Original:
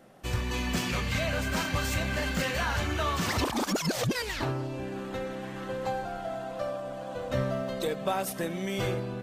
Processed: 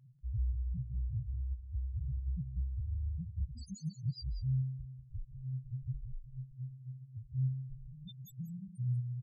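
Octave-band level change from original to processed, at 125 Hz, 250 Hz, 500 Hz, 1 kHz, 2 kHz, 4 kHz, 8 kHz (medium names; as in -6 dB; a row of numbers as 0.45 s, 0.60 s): -1.5 dB, -14.0 dB, under -40 dB, under -40 dB, under -40 dB, -24.0 dB, under -25 dB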